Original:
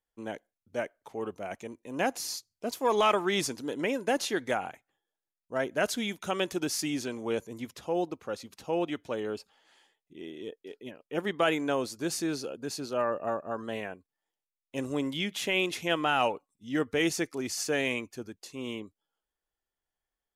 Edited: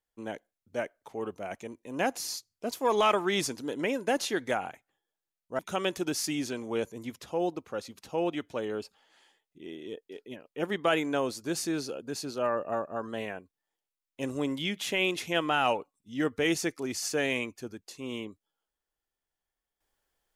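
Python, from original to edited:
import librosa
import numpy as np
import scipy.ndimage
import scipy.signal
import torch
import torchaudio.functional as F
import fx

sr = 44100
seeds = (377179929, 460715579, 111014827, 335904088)

y = fx.edit(x, sr, fx.cut(start_s=5.59, length_s=0.55), tone=tone)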